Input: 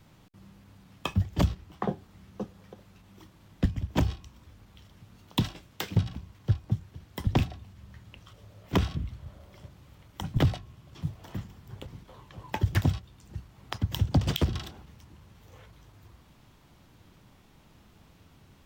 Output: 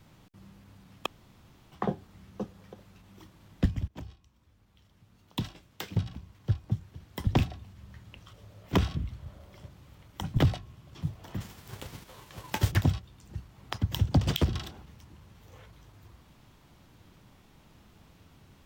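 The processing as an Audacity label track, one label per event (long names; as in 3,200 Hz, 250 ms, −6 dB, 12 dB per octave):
1.060000	1.720000	fill with room tone
3.880000	7.420000	fade in, from −20 dB
11.400000	12.700000	spectral envelope flattened exponent 0.6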